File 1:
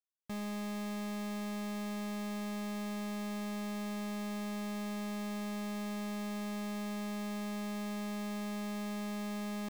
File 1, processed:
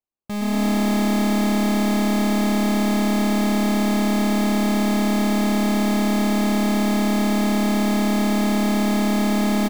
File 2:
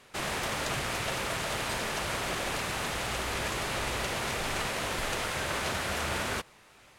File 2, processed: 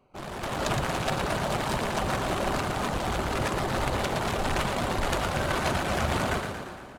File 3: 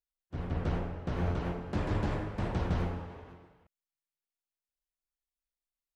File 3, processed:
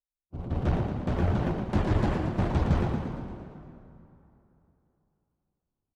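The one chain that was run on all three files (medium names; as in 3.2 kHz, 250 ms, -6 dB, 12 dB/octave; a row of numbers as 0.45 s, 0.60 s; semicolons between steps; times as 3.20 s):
local Wiener filter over 25 samples; reverb removal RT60 0.83 s; on a send: frequency-shifting echo 115 ms, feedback 60%, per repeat +36 Hz, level -6.5 dB; on the sum: level rider gain up to 10.5 dB; peaking EQ 470 Hz -5 dB 0.2 oct; feedback comb 760 Hz, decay 0.33 s, mix 50%; plate-style reverb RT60 3.2 s, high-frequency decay 0.65×, DRR 10.5 dB; peak normalisation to -12 dBFS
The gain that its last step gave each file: +16.0 dB, +4.0 dB, +2.5 dB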